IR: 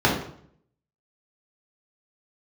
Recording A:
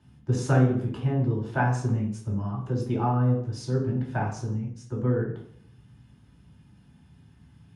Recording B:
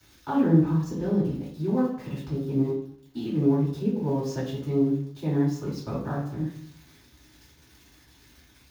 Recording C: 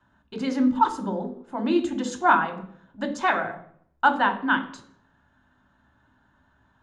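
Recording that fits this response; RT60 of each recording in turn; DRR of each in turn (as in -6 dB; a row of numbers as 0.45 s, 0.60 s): A; 0.60 s, 0.60 s, 0.60 s; -4.0 dB, -9.5 dB, 5.5 dB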